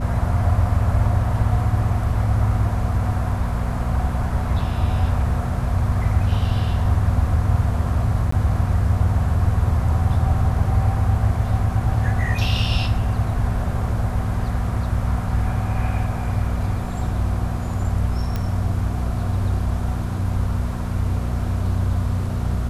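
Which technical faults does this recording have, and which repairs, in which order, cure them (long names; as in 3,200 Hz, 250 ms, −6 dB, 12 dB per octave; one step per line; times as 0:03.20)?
mains hum 60 Hz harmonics 4 −25 dBFS
0:08.31–0:08.32: drop-out 14 ms
0:18.36: click −12 dBFS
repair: click removal
hum removal 60 Hz, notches 4
repair the gap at 0:08.31, 14 ms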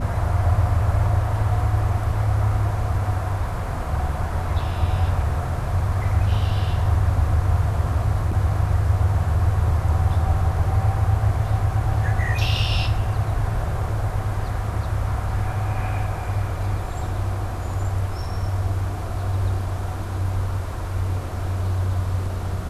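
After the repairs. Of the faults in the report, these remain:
0:18.36: click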